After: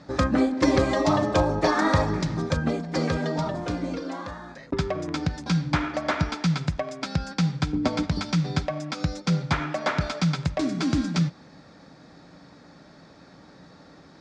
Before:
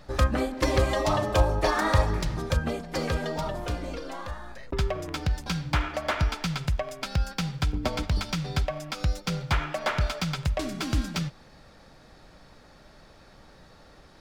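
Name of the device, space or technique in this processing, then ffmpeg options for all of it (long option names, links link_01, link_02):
car door speaker: -af "highpass=99,equalizer=frequency=170:width_type=q:width=4:gain=7,equalizer=frequency=280:width_type=q:width=4:gain=9,equalizer=frequency=2900:width_type=q:width=4:gain=-6,lowpass=frequency=7200:width=0.5412,lowpass=frequency=7200:width=1.3066,volume=2dB"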